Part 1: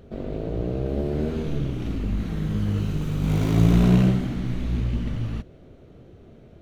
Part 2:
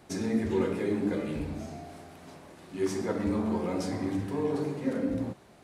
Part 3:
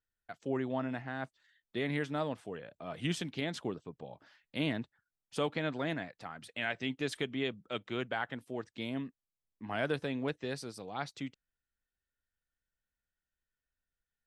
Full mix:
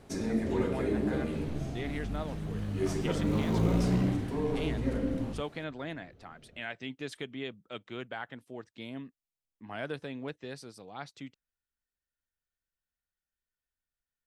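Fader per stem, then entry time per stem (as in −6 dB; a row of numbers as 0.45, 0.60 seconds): −11.0, −2.5, −4.0 decibels; 0.00, 0.00, 0.00 seconds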